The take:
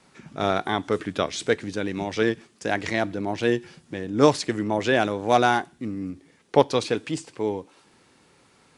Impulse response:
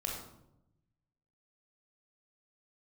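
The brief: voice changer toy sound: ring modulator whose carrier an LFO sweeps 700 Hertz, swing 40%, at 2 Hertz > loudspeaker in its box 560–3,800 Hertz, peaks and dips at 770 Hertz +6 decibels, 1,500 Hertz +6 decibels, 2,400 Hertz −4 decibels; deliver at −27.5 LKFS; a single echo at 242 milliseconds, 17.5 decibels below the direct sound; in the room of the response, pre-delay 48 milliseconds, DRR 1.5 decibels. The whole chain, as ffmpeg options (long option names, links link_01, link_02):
-filter_complex "[0:a]aecho=1:1:242:0.133,asplit=2[link_01][link_02];[1:a]atrim=start_sample=2205,adelay=48[link_03];[link_02][link_03]afir=irnorm=-1:irlink=0,volume=-4dB[link_04];[link_01][link_04]amix=inputs=2:normalize=0,aeval=exprs='val(0)*sin(2*PI*700*n/s+700*0.4/2*sin(2*PI*2*n/s))':channel_layout=same,highpass=560,equalizer=frequency=770:width_type=q:width=4:gain=6,equalizer=frequency=1500:width_type=q:width=4:gain=6,equalizer=frequency=2400:width_type=q:width=4:gain=-4,lowpass=frequency=3800:width=0.5412,lowpass=frequency=3800:width=1.3066,volume=-3.5dB"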